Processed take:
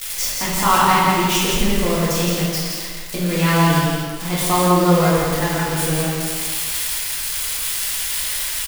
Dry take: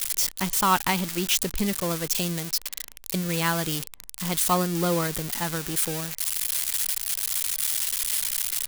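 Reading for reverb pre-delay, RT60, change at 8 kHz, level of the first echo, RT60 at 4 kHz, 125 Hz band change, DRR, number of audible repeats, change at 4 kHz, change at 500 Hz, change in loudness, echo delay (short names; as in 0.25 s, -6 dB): 3 ms, 1.8 s, +3.5 dB, -3.0 dB, 1.2 s, +11.0 dB, -9.5 dB, 1, +6.5 dB, +10.5 dB, +6.5 dB, 0.168 s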